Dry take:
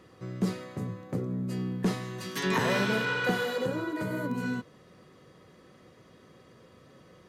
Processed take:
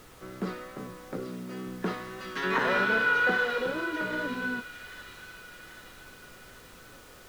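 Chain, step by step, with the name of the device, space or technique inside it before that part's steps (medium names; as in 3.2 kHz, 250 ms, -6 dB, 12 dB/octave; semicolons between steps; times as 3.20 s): horn gramophone (band-pass 260–3500 Hz; peaking EQ 1.4 kHz +9 dB 0.38 oct; wow and flutter 28 cents; pink noise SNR 21 dB); 1.26–1.67 s: high-pass 130 Hz; feedback echo behind a high-pass 788 ms, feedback 57%, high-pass 2.8 kHz, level -5 dB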